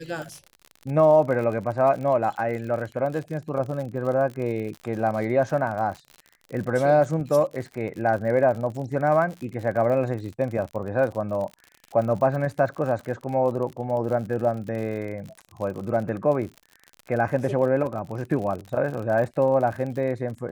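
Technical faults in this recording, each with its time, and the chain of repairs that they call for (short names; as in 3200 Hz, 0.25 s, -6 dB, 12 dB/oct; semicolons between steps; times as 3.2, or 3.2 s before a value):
crackle 59/s -32 dBFS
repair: de-click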